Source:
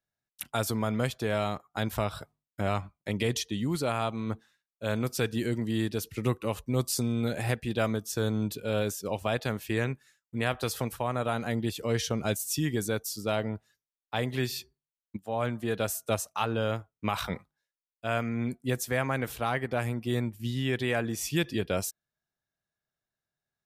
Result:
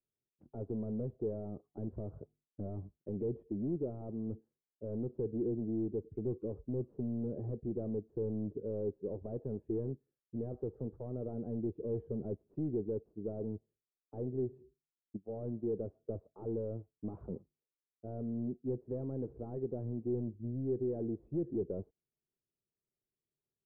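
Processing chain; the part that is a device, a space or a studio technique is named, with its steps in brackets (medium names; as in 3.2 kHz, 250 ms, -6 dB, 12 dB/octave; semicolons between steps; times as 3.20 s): overdriven synthesiser ladder filter (saturation -29.5 dBFS, distortion -8 dB; four-pole ladder low-pass 460 Hz, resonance 55%); trim +5 dB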